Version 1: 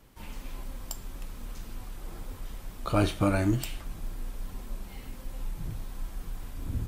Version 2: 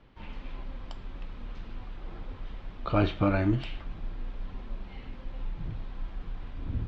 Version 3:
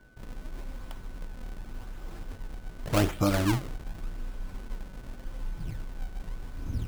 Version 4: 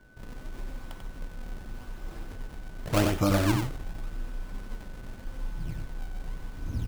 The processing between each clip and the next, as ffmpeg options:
-af "lowpass=f=3700:w=0.5412,lowpass=f=3700:w=1.3066"
-af "acrusher=samples=33:mix=1:aa=0.000001:lfo=1:lforange=52.8:lforate=0.86,aeval=exprs='val(0)+0.000891*sin(2*PI*1500*n/s)':c=same"
-af "aecho=1:1:92:0.562"

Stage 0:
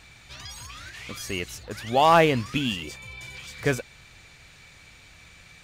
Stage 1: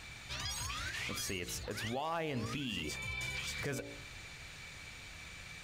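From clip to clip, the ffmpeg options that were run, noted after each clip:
-af "bandreject=f=57.24:t=h:w=4,bandreject=f=114.48:t=h:w=4,bandreject=f=171.72:t=h:w=4,bandreject=f=228.96:t=h:w=4,bandreject=f=286.2:t=h:w=4,bandreject=f=343.44:t=h:w=4,bandreject=f=400.68:t=h:w=4,bandreject=f=457.92:t=h:w=4,bandreject=f=515.16:t=h:w=4,bandreject=f=572.4:t=h:w=4,bandreject=f=629.64:t=h:w=4,bandreject=f=686.88:t=h:w=4,bandreject=f=744.12:t=h:w=4,bandreject=f=801.36:t=h:w=4,bandreject=f=858.6:t=h:w=4,acompressor=threshold=0.0447:ratio=6,alimiter=level_in=2:limit=0.0631:level=0:latency=1:release=115,volume=0.501,volume=1.12"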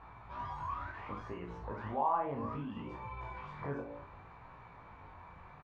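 -filter_complex "[0:a]lowpass=f=1000:t=q:w=4.9,asplit=2[s0][s1];[s1]aecho=0:1:35|68:0.562|0.316[s2];[s0][s2]amix=inputs=2:normalize=0,flanger=delay=17:depth=4.7:speed=0.66"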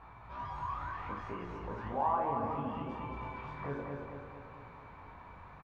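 -af "aecho=1:1:225|450|675|900|1125|1350|1575:0.596|0.322|0.174|0.0938|0.0506|0.0274|0.0148"

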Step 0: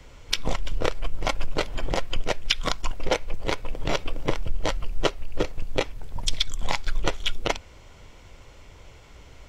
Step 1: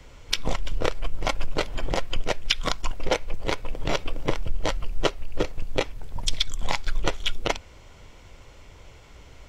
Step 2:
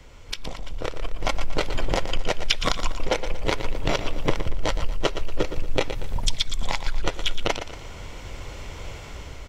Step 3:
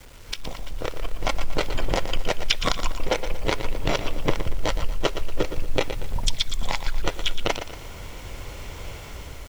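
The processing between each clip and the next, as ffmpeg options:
-af anull
-af "acompressor=threshold=0.0316:ratio=3,aecho=1:1:117|234|351|468:0.316|0.126|0.0506|0.0202,dynaudnorm=f=150:g=11:m=3.76"
-af "acrusher=bits=7:mix=0:aa=0.000001"

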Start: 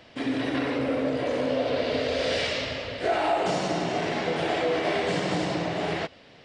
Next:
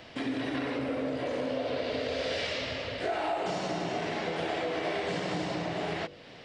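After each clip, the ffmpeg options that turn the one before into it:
-filter_complex "[0:a]acrossover=split=7800[s0][s1];[s1]acompressor=threshold=0.00126:ratio=4:attack=1:release=60[s2];[s0][s2]amix=inputs=2:normalize=0,bandreject=f=48.82:t=h:w=4,bandreject=f=97.64:t=h:w=4,bandreject=f=146.46:t=h:w=4,bandreject=f=195.28:t=h:w=4,bandreject=f=244.1:t=h:w=4,bandreject=f=292.92:t=h:w=4,bandreject=f=341.74:t=h:w=4,bandreject=f=390.56:t=h:w=4,bandreject=f=439.38:t=h:w=4,bandreject=f=488.2:t=h:w=4,bandreject=f=537.02:t=h:w=4,bandreject=f=585.84:t=h:w=4,acompressor=threshold=0.0112:ratio=2,volume=1.41"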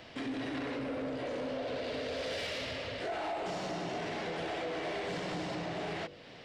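-af "asoftclip=type=tanh:threshold=0.0335,volume=0.794"

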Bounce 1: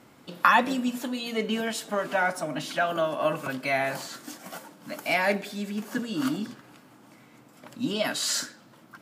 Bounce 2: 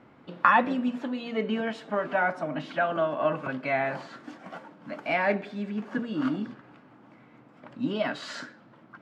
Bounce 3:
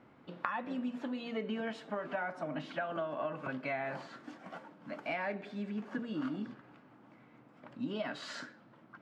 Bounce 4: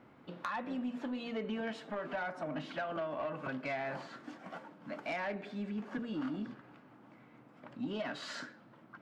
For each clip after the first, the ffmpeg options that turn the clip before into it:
-af "lowpass=2200"
-af "acompressor=threshold=0.0447:ratio=12,volume=0.531"
-af "asoftclip=type=tanh:threshold=0.0282,volume=1.12"

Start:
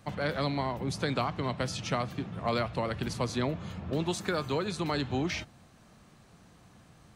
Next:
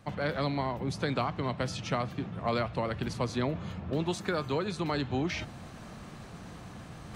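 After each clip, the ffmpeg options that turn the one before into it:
-af "highshelf=f=5100:g=-6.5,areverse,acompressor=mode=upward:threshold=0.0224:ratio=2.5,areverse"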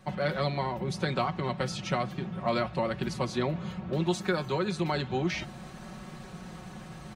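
-af "aecho=1:1:5.4:0.7"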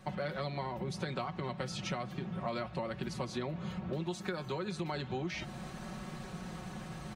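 -af "acompressor=threshold=0.0178:ratio=4"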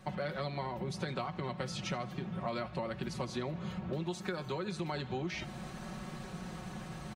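-af "aecho=1:1:80|160|240|320:0.0841|0.0471|0.0264|0.0148"

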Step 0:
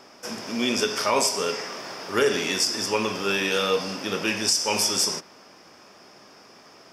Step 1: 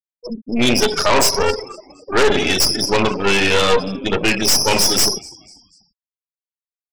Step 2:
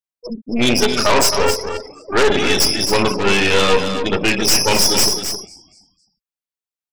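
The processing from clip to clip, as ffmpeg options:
-filter_complex "[0:a]afftfilt=real='re*gte(hypot(re,im),0.0794)':imag='im*gte(hypot(re,im),0.0794)':win_size=1024:overlap=0.75,asplit=4[s0][s1][s2][s3];[s1]adelay=245,afreqshift=-71,volume=0.0668[s4];[s2]adelay=490,afreqshift=-142,volume=0.0275[s5];[s3]adelay=735,afreqshift=-213,volume=0.0112[s6];[s0][s4][s5][s6]amix=inputs=4:normalize=0,aeval=exprs='0.335*(cos(1*acos(clip(val(0)/0.335,-1,1)))-cos(1*PI/2))+0.106*(cos(5*acos(clip(val(0)/0.335,-1,1)))-cos(5*PI/2))+0.106*(cos(8*acos(clip(val(0)/0.335,-1,1)))-cos(8*PI/2))':c=same,volume=1.26"
-af "aecho=1:1:266:0.376"

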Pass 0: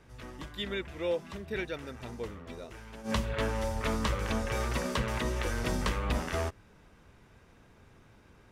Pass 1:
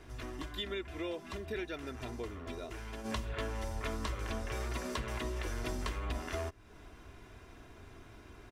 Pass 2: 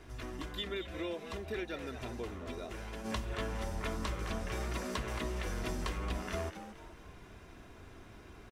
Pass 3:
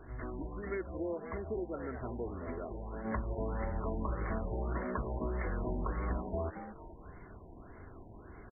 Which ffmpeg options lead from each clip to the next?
-af "aecho=1:1:2.9:0.55,acompressor=threshold=0.00631:ratio=2.5,volume=1.58"
-filter_complex "[0:a]asplit=5[s0][s1][s2][s3][s4];[s1]adelay=223,afreqshift=130,volume=0.282[s5];[s2]adelay=446,afreqshift=260,volume=0.101[s6];[s3]adelay=669,afreqshift=390,volume=0.0367[s7];[s4]adelay=892,afreqshift=520,volume=0.0132[s8];[s0][s5][s6][s7][s8]amix=inputs=5:normalize=0"
-af "afftfilt=real='re*lt(b*sr/1024,970*pow(2300/970,0.5+0.5*sin(2*PI*1.7*pts/sr)))':imag='im*lt(b*sr/1024,970*pow(2300/970,0.5+0.5*sin(2*PI*1.7*pts/sr)))':win_size=1024:overlap=0.75,volume=1.26"

